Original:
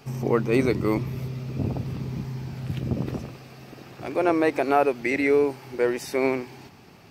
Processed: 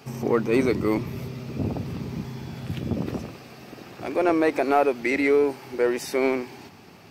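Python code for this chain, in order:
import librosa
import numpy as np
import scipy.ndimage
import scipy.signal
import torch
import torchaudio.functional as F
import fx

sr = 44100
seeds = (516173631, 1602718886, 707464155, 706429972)

p1 = scipy.signal.sosfilt(scipy.signal.butter(2, 71.0, 'highpass', fs=sr, output='sos'), x)
p2 = fx.peak_eq(p1, sr, hz=130.0, db=-7.0, octaves=0.24)
p3 = 10.0 ** (-23.5 / 20.0) * np.tanh(p2 / 10.0 ** (-23.5 / 20.0))
p4 = p2 + (p3 * 10.0 ** (-5.0 / 20.0))
p5 = fx.dmg_tone(p4, sr, hz=3400.0, level_db=-56.0, at=(2.24, 2.94), fade=0.02)
y = p5 * 10.0 ** (-1.5 / 20.0)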